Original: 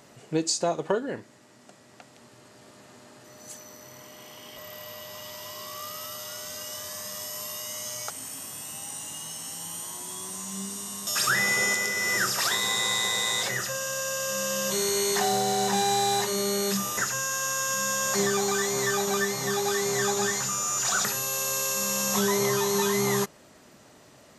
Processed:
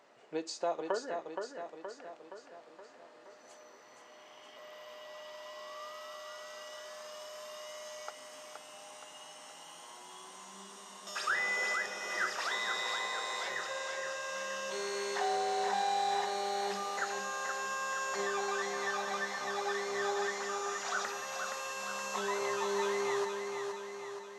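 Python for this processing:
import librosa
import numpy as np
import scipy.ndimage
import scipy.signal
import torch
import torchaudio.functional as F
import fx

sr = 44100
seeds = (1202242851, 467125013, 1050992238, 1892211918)

y = scipy.signal.sosfilt(scipy.signal.butter(2, 520.0, 'highpass', fs=sr, output='sos'), x)
y = fx.spacing_loss(y, sr, db_at_10k=22)
y = fx.echo_feedback(y, sr, ms=471, feedback_pct=56, wet_db=-5.5)
y = y * librosa.db_to_amplitude(-3.5)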